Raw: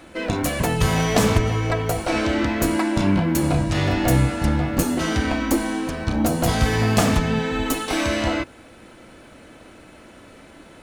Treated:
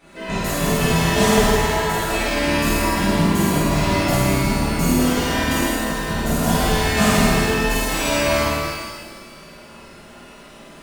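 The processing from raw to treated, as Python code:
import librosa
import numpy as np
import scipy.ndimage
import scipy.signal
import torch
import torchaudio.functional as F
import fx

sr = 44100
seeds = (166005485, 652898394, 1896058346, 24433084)

y = x + 0.63 * np.pad(x, (int(5.0 * sr / 1000.0), 0))[:len(x)]
y = fx.room_flutter(y, sr, wall_m=8.9, rt60_s=1.0)
y = fx.rev_shimmer(y, sr, seeds[0], rt60_s=1.5, semitones=12, shimmer_db=-8, drr_db=-10.0)
y = F.gain(torch.from_numpy(y), -11.0).numpy()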